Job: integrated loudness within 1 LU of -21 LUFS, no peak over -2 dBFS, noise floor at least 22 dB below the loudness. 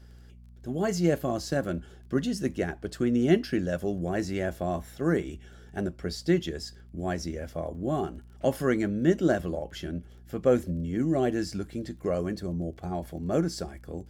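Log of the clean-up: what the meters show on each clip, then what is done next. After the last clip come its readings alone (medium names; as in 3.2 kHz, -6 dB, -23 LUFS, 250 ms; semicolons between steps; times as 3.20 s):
tick rate 20 per s; hum 60 Hz; highest harmonic 240 Hz; hum level -45 dBFS; loudness -29.5 LUFS; peak level -9.0 dBFS; loudness target -21.0 LUFS
-> de-click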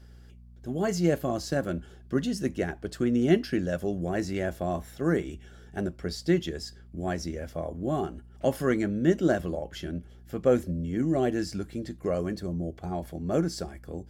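tick rate 0 per s; hum 60 Hz; highest harmonic 240 Hz; hum level -45 dBFS
-> de-hum 60 Hz, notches 4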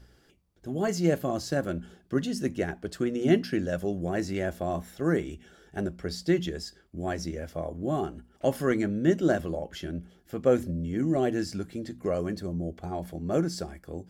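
hum not found; loudness -29.5 LUFS; peak level -9.0 dBFS; loudness target -21.0 LUFS
-> trim +8.5 dB; peak limiter -2 dBFS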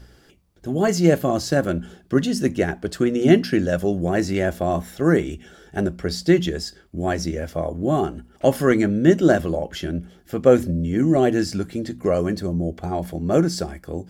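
loudness -21.5 LUFS; peak level -2.0 dBFS; noise floor -53 dBFS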